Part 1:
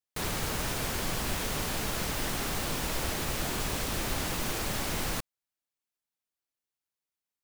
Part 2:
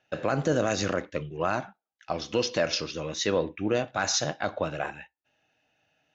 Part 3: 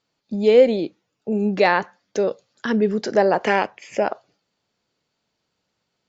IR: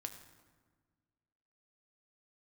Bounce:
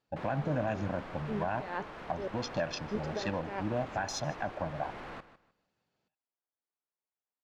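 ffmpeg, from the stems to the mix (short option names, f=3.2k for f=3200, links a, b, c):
-filter_complex "[0:a]adynamicsmooth=sensitivity=6.5:basefreq=1.8k,highshelf=f=11k:g=-11.5,asplit=2[a][b];[b]highpass=f=720:p=1,volume=24dB,asoftclip=type=tanh:threshold=-20.5dB[c];[a][c]amix=inputs=2:normalize=0,lowpass=f=2.3k:p=1,volume=-6dB,volume=-13.5dB,asplit=2[d][e];[e]volume=-14.5dB[f];[1:a]afwtdn=0.0224,aecho=1:1:1.2:0.93,volume=-4.5dB,asplit=3[g][h][i];[h]volume=-23dB[j];[2:a]alimiter=limit=-12.5dB:level=0:latency=1,volume=-5dB,asplit=3[k][l][m];[k]atrim=end=2.28,asetpts=PTS-STARTPTS,afade=t=out:st=2.276:d=0.004:c=hsin[n];[l]atrim=start=2.28:end=2.91,asetpts=PTS-STARTPTS,volume=0[o];[m]atrim=start=2.91,asetpts=PTS-STARTPTS,afade=t=in:d=0.004:c=hsin[p];[n][o][p]concat=n=3:v=0:a=1[q];[i]apad=whole_len=268224[r];[q][r]sidechaincompress=threshold=-48dB:ratio=8:attack=16:release=129[s];[f][j]amix=inputs=2:normalize=0,aecho=0:1:153|306|459|612:1|0.24|0.0576|0.0138[t];[d][g][s][t]amix=inputs=4:normalize=0,highshelf=f=2.3k:g=-8.5,alimiter=limit=-21.5dB:level=0:latency=1:release=476"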